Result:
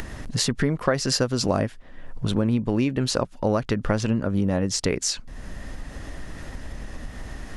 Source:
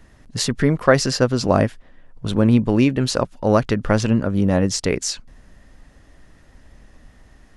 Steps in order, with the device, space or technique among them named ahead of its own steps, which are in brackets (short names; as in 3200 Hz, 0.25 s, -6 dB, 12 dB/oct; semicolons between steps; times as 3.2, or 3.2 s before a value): 1.08–1.6 high shelf 4900 Hz +8 dB; upward and downward compression (upward compressor, threshold -21 dBFS; compressor 4:1, threshold -19 dBFS, peak gain reduction 9.5 dB)